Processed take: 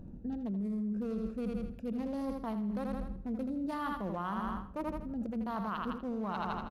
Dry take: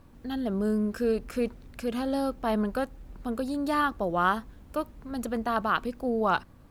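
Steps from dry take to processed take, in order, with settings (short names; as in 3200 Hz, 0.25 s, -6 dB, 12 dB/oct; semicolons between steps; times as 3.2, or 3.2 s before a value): Wiener smoothing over 41 samples; thirty-one-band EQ 200 Hz +11 dB, 1000 Hz +6 dB, 1600 Hz -4 dB, 6300 Hz +5 dB; feedback echo 81 ms, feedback 41%, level -7.5 dB; on a send at -19 dB: reverb RT60 1.2 s, pre-delay 5 ms; on the sum: limiter -20 dBFS, peak gain reduction 10 dB; reverse; compressor 12:1, threshold -39 dBFS, peak gain reduction 16.5 dB; reverse; gain +6 dB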